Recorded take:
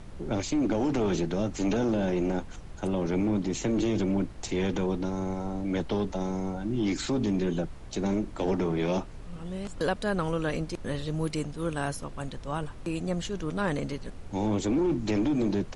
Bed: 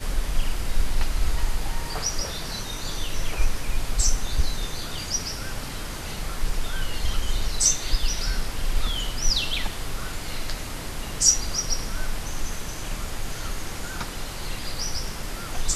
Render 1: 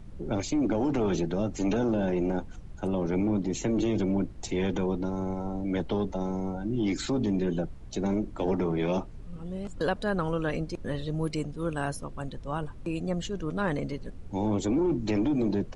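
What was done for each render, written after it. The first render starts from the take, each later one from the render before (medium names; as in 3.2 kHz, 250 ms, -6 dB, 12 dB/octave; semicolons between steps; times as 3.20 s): noise reduction 9 dB, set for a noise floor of -43 dBFS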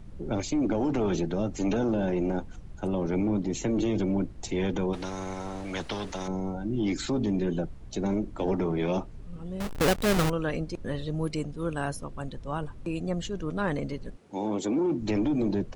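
4.93–6.28 s: spectrum-flattening compressor 2:1; 9.60–10.30 s: square wave that keeps the level; 14.15–15.00 s: high-pass 320 Hz -> 140 Hz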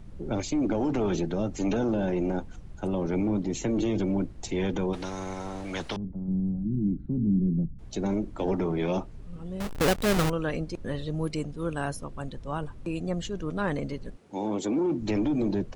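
5.96–7.79 s: resonant low-pass 190 Hz, resonance Q 2.1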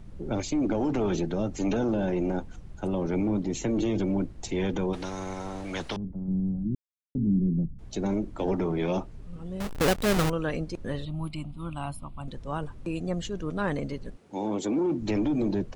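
6.75–7.15 s: mute; 11.05–12.28 s: static phaser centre 1.7 kHz, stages 6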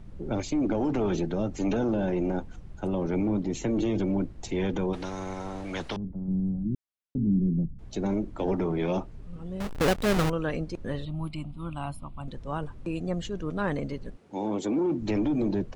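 treble shelf 5.3 kHz -5.5 dB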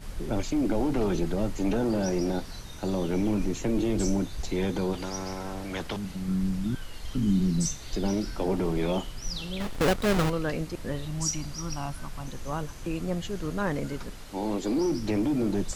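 add bed -12.5 dB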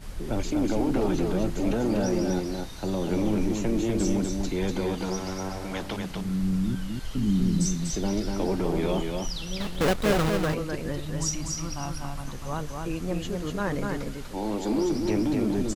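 delay 244 ms -4 dB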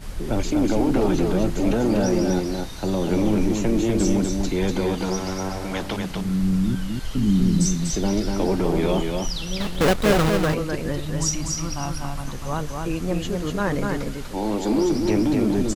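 trim +5 dB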